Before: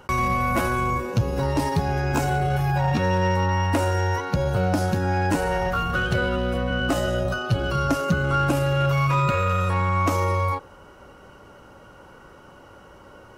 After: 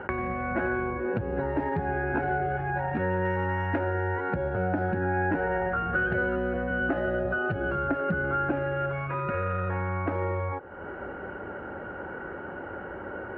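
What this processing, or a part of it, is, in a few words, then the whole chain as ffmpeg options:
bass amplifier: -filter_complex "[0:a]asettb=1/sr,asplit=3[a][b][c];[a]atrim=end=3.254[d];[b]atrim=start=3.25:end=3.79,asetpts=PTS-STARTPTS,afade=t=in:d=0.004:c=qsin,afade=t=out:st=0.536:d=0.004:c=qsin,aemphasis=mode=production:type=75kf[e];[c]atrim=start=3.786[f];[d][e]acrossfade=d=0.004:c1=hsin:c2=qsin[g];[g][f]acrossfade=d=0.004:c1=qsin:c2=hsin,acompressor=threshold=-39dB:ratio=3,highpass=71,equalizer=f=130:t=q:w=4:g=-9,equalizer=f=370:t=q:w=4:g=5,equalizer=f=780:t=q:w=4:g=3,equalizer=f=1.1k:t=q:w=4:g=-9,equalizer=f=1.6k:t=q:w=4:g=8,lowpass=f=2k:w=0.5412,lowpass=f=2k:w=1.3066,volume=9dB"

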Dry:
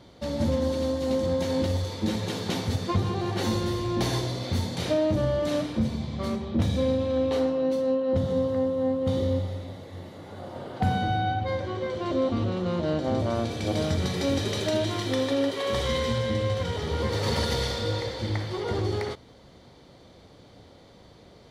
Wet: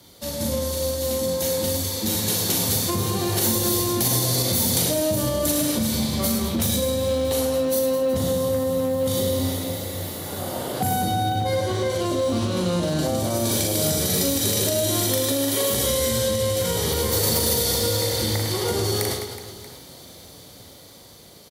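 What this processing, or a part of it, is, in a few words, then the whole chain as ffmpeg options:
FM broadcast chain: -filter_complex "[0:a]highpass=45,aecho=1:1:40|104|206.4|370.2|632.4:0.631|0.398|0.251|0.158|0.1,dynaudnorm=f=870:g=7:m=11.5dB,acrossover=split=130|750|6600[a][b][c][d];[a]acompressor=threshold=-28dB:ratio=4[e];[b]acompressor=threshold=-18dB:ratio=4[f];[c]acompressor=threshold=-31dB:ratio=4[g];[d]acompressor=threshold=-40dB:ratio=4[h];[e][f][g][h]amix=inputs=4:normalize=0,aemphasis=mode=production:type=50fm,alimiter=limit=-12.5dB:level=0:latency=1:release=76,asoftclip=type=hard:threshold=-14dB,lowpass=f=15k:w=0.5412,lowpass=f=15k:w=1.3066,aemphasis=mode=production:type=50fm,volume=-2dB"

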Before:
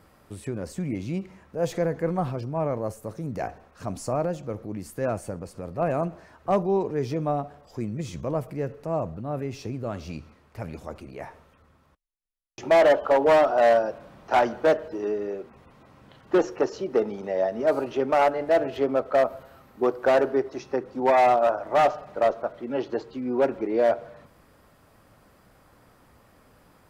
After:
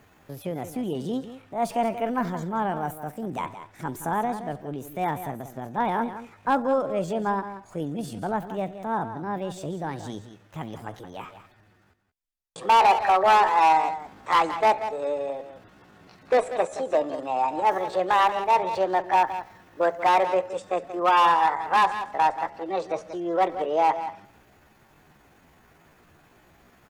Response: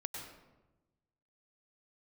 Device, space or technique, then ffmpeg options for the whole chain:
chipmunk voice: -filter_complex "[0:a]asettb=1/sr,asplit=3[a][b][c];[a]atrim=end=1.934[d];[b]atrim=start=1.93:end=2.99,asetpts=PTS-STARTPTS,afade=t=in:d=0.004:c=qsin,afade=t=out:st=1.056:d=0.004:c=qsin,highshelf=f=8.3k:g=9.5[e];[c]atrim=start=2.986[f];[d][e]acrossfade=d=0.004:c1=hsin:c2=qsin[g];[g][f]acrossfade=d=0.004:c1=qsin:c2=hsin,aecho=1:1:176:0.266,asetrate=60591,aresample=44100,atempo=0.727827"

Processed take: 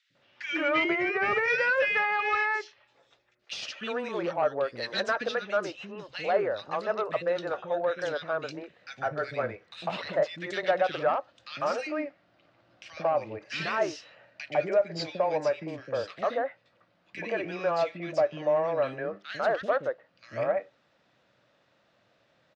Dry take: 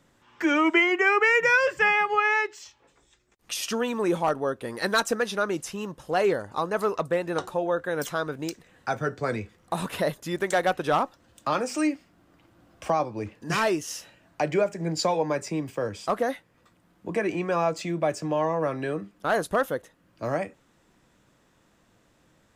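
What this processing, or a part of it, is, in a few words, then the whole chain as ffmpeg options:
overdrive pedal into a guitar cabinet: -filter_complex "[0:a]highshelf=f=4.1k:g=11,acrossover=split=340|2000[a][b][c];[a]adelay=100[d];[b]adelay=150[e];[d][e][c]amix=inputs=3:normalize=0,asplit=2[f][g];[g]highpass=f=720:p=1,volume=11dB,asoftclip=type=tanh:threshold=-10.5dB[h];[f][h]amix=inputs=2:normalize=0,lowpass=f=6.3k:p=1,volume=-6dB,highpass=78,equalizer=f=120:t=q:w=4:g=6,equalizer=f=590:t=q:w=4:g=8,equalizer=f=1k:t=q:w=4:g=-5,equalizer=f=3.3k:t=q:w=4:g=-4,lowpass=f=4.1k:w=0.5412,lowpass=f=4.1k:w=1.3066,asettb=1/sr,asplit=3[i][j][k];[i]atrim=end=0.844[l];[j]atrim=start=0.84:end=1.48,asetpts=PTS-STARTPTS,afade=t=in:d=0.004:c=qsin,afade=t=out:st=0.636:d=0.004:c=qsin,tiltshelf=f=970:g=5.5[m];[k]atrim=start=1.476[n];[l][m]acrossfade=d=0.004:c1=hsin:c2=qsin[o];[o][n]acrossfade=d=0.004:c1=qsin:c2=hsin,volume=-6.5dB"

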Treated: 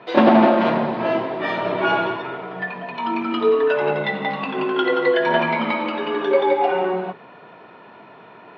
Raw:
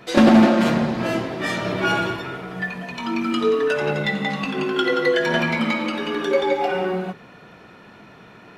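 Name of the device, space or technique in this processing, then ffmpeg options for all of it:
kitchen radio: -af "highpass=160,equalizer=f=200:t=q:w=4:g=-3,equalizer=f=410:t=q:w=4:g=4,equalizer=f=650:t=q:w=4:g=6,equalizer=f=960:t=q:w=4:g=9,lowpass=f=3.7k:w=0.5412,lowpass=f=3.7k:w=1.3066,volume=-1dB"

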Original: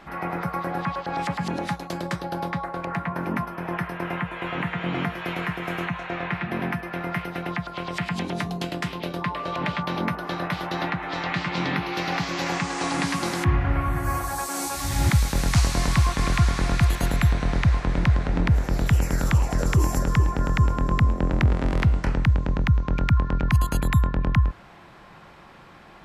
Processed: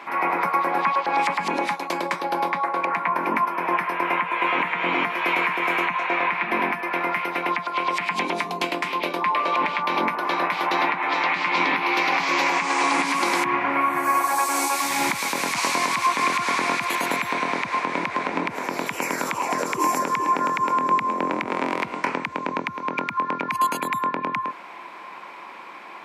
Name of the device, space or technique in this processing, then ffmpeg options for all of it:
laptop speaker: -af "highpass=f=260:w=0.5412,highpass=f=260:w=1.3066,equalizer=f=1k:t=o:w=0.29:g=12,equalizer=f=2.3k:t=o:w=0.36:g=11,alimiter=limit=-15dB:level=0:latency=1:release=104,volume=4dB"

